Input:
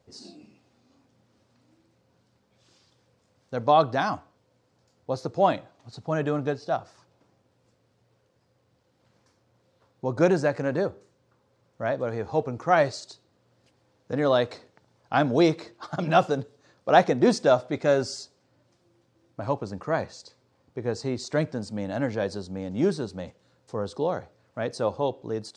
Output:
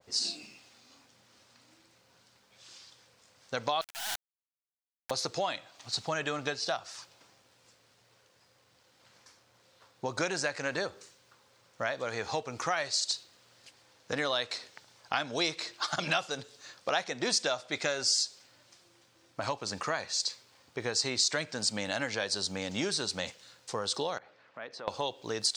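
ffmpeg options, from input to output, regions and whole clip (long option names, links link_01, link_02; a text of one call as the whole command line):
ffmpeg -i in.wav -filter_complex "[0:a]asettb=1/sr,asplit=3[link_01][link_02][link_03];[link_01]atrim=end=3.814[link_04];[link_02]atrim=start=3.81:end=5.11,asetpts=PTS-STARTPTS,afade=type=in:duration=0.004:curve=qsin,afade=type=out:start_time=1.296:duration=0.004:curve=qsin,asuperpass=centerf=800:order=20:qfactor=2.1,acompressor=threshold=-38dB:ratio=4:attack=3.2:release=140:knee=1:detection=peak,acrusher=bits=4:dc=4:mix=0:aa=0.000001[link_05];[link_03]atrim=start=5.106[link_06];[link_04][link_05]acrossfade=duration=0.004:curve1=hsin:curve2=qsin[link_07];[link_07][link_06]acrossfade=duration=0.004:curve1=qsin:curve2=hsin,asettb=1/sr,asplit=3[link_08][link_09][link_10];[link_08]atrim=end=24.184[link_11];[link_09]atrim=start=24.18:end=24.88,asetpts=PTS-STARTPTS,afade=type=in:duration=0.004:curve=qsin,afade=type=out:start_time=0.696:duration=0.004:curve=qsin,acompressor=threshold=-46dB:ratio=3:attack=3.2:release=140:knee=1:detection=peak,highpass=180,lowpass=2300[link_12];[link_10]atrim=start=24.876[link_13];[link_11][link_12]acrossfade=duration=0.004:curve1=hsin:curve2=qsin[link_14];[link_14][link_13]acrossfade=duration=0.004:curve1=qsin:curve2=hsin,tiltshelf=frequency=760:gain=-9,acompressor=threshold=-34dB:ratio=5,adynamicequalizer=threshold=0.00251:dfrequency=1900:dqfactor=0.7:tfrequency=1900:tqfactor=0.7:attack=5:release=100:ratio=0.375:range=3.5:mode=boostabove:tftype=highshelf,volume=3dB" out.wav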